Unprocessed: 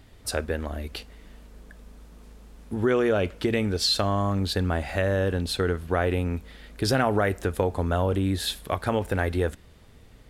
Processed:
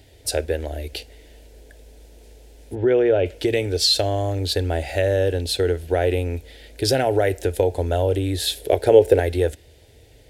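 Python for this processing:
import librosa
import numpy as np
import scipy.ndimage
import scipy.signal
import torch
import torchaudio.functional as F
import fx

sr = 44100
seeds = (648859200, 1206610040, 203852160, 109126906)

y = scipy.signal.sosfilt(scipy.signal.butter(2, 61.0, 'highpass', fs=sr, output='sos'), x)
y = fx.fixed_phaser(y, sr, hz=480.0, stages=4)
y = fx.lowpass(y, sr, hz=2400.0, slope=12, at=(2.75, 3.26))
y = fx.peak_eq(y, sr, hz=430.0, db=12.0, octaves=0.85, at=(8.57, 9.2))
y = y * 10.0 ** (6.5 / 20.0)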